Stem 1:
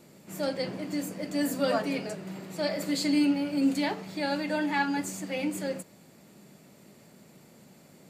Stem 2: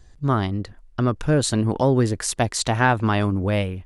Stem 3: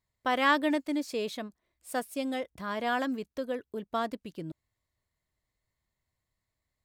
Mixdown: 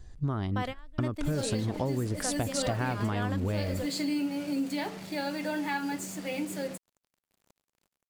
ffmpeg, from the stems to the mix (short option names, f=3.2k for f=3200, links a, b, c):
-filter_complex "[0:a]acrusher=bits=6:mix=0:aa=0.5,adelay=950,volume=-1.5dB[a];[1:a]lowshelf=f=380:g=5.5,acompressor=threshold=-17dB:ratio=6,volume=-3.5dB,asplit=2[b][c];[2:a]adelay=300,volume=-1dB[d];[c]apad=whole_len=314944[e];[d][e]sidechaingate=range=-32dB:threshold=-34dB:ratio=16:detection=peak[f];[a][b][f]amix=inputs=3:normalize=0,acompressor=threshold=-29dB:ratio=2.5"